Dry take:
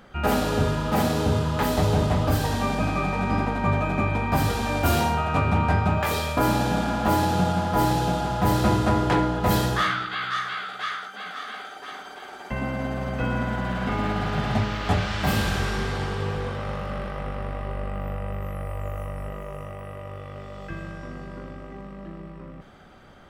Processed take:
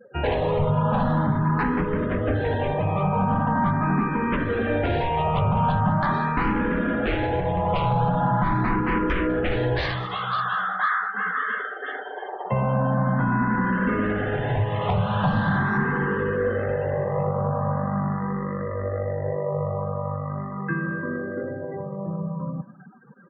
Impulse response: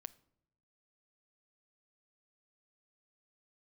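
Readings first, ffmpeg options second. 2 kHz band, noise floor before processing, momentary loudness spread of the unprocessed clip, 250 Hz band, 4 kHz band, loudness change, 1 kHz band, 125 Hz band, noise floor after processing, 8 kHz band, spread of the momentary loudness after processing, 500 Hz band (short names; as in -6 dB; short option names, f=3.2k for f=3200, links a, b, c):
+2.5 dB, -41 dBFS, 16 LU, +1.5 dB, -6.5 dB, +0.5 dB, +1.5 dB, +1.0 dB, -34 dBFS, under -30 dB, 8 LU, +2.5 dB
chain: -filter_complex "[0:a]highpass=f=120:w=0.5412,highpass=f=120:w=1.3066,equalizer=f=490:t=q:w=4:g=7,equalizer=f=1k:t=q:w=4:g=8,equalizer=f=1.7k:t=q:w=4:g=8,equalizer=f=4.8k:t=q:w=4:g=-9,lowpass=f=5.6k:w=0.5412,lowpass=f=5.6k:w=1.3066,bandreject=f=2.3k:w=9.7,aresample=16000,aeval=exprs='0.501*sin(PI/2*3.16*val(0)/0.501)':c=same,aresample=44100,afftfilt=real='re*gte(hypot(re,im),0.0447)':imag='im*gte(hypot(re,im),0.0447)':win_size=1024:overlap=0.75,afftdn=nr=18:nf=-25,aemphasis=mode=reproduction:type=bsi,alimiter=limit=-1.5dB:level=0:latency=1:release=244,aecho=1:1:198:0.1,acompressor=threshold=-13dB:ratio=2,asplit=2[a][b];[b]afreqshift=0.42[c];[a][c]amix=inputs=2:normalize=1,volume=-6dB"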